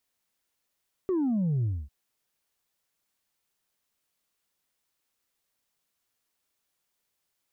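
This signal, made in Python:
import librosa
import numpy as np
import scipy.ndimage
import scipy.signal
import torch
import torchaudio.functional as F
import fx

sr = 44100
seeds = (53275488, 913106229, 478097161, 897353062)

y = fx.sub_drop(sr, level_db=-24, start_hz=390.0, length_s=0.8, drive_db=1.5, fade_s=0.25, end_hz=65.0)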